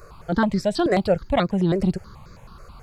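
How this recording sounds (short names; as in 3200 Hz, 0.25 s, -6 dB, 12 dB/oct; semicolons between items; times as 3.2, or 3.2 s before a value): notches that jump at a steady rate 9.3 Hz 890–3000 Hz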